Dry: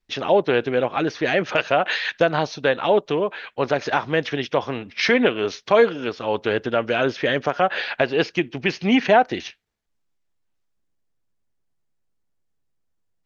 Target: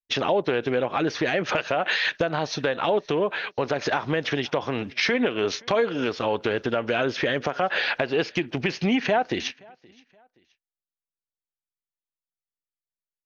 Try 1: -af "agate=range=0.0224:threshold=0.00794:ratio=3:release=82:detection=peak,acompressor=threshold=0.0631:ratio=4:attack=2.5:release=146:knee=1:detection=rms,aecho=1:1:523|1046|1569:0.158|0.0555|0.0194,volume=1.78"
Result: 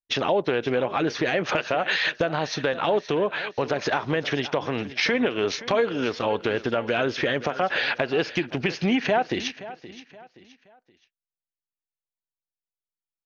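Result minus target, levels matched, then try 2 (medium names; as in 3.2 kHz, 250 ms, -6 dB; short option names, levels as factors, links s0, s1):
echo-to-direct +11 dB
-af "agate=range=0.0224:threshold=0.00794:ratio=3:release=82:detection=peak,acompressor=threshold=0.0631:ratio=4:attack=2.5:release=146:knee=1:detection=rms,aecho=1:1:523|1046:0.0447|0.0156,volume=1.78"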